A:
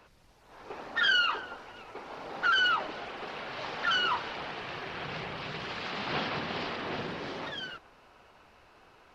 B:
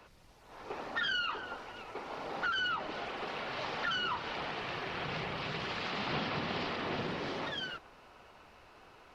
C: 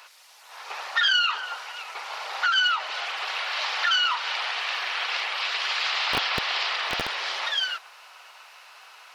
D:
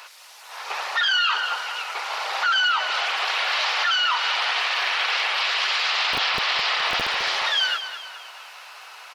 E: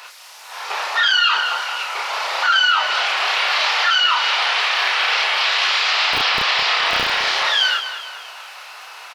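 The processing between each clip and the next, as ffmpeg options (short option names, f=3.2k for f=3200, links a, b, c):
-filter_complex "[0:a]bandreject=f=1.6k:w=27,acrossover=split=260[a][b];[b]acompressor=threshold=-35dB:ratio=3[c];[a][c]amix=inputs=2:normalize=0,volume=1dB"
-filter_complex "[0:a]highshelf=f=2.4k:g=10,acrossover=split=680[a][b];[a]acrusher=bits=4:mix=0:aa=0.000001[c];[c][b]amix=inputs=2:normalize=0,volume=8dB"
-af "alimiter=limit=-20.5dB:level=0:latency=1:release=14,aecho=1:1:210|420|630|840|1050:0.282|0.127|0.0571|0.0257|0.0116,volume=6dB"
-filter_complex "[0:a]asplit=2[a][b];[b]adelay=31,volume=-2dB[c];[a][c]amix=inputs=2:normalize=0,volume=3dB"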